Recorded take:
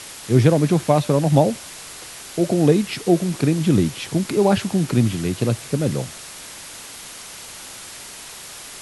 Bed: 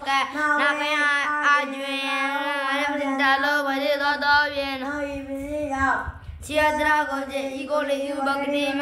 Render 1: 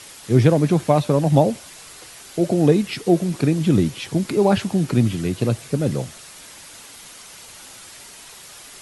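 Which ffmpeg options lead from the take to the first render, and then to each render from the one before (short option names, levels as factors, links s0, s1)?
-af "afftdn=nr=6:nf=-38"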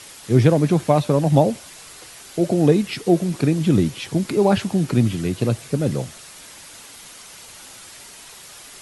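-af anull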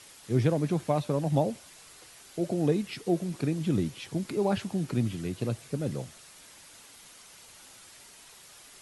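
-af "volume=0.299"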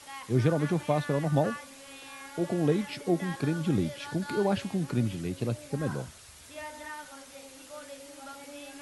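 -filter_complex "[1:a]volume=0.0841[s0];[0:a][s0]amix=inputs=2:normalize=0"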